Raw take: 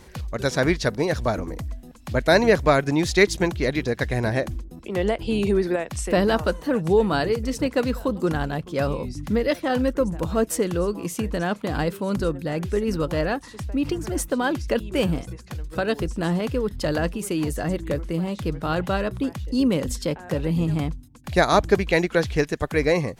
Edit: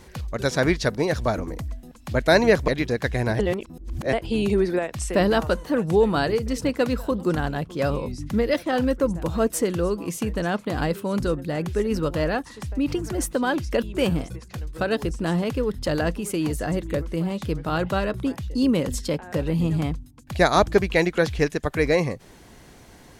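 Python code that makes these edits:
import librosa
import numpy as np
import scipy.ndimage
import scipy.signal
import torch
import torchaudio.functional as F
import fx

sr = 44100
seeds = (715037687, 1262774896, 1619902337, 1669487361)

y = fx.edit(x, sr, fx.cut(start_s=2.68, length_s=0.97),
    fx.reverse_span(start_s=4.36, length_s=0.74), tone=tone)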